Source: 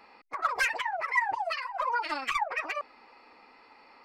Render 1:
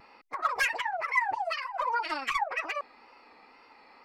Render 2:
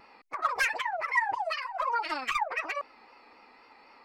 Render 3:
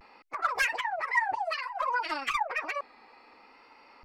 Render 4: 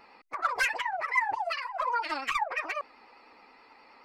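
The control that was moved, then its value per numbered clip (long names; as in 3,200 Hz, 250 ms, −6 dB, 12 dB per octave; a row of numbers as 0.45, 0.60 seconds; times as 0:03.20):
pitch vibrato, speed: 2, 3.9, 0.6, 9.5 Hertz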